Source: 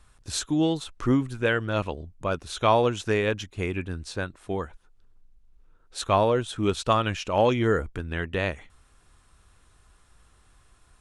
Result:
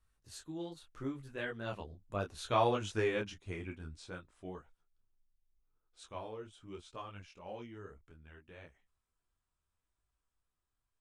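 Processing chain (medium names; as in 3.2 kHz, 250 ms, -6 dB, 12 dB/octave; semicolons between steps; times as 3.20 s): Doppler pass-by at 2.72 s, 19 m/s, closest 13 m; detune thickener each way 24 cents; trim -5 dB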